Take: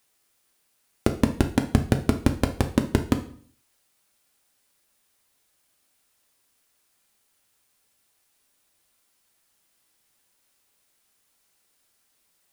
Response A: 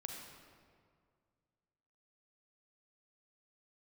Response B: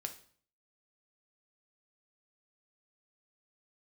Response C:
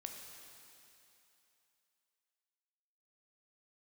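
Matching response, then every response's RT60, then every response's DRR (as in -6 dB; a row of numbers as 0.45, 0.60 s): B; 2.0, 0.50, 2.9 s; 1.0, 5.0, 2.0 dB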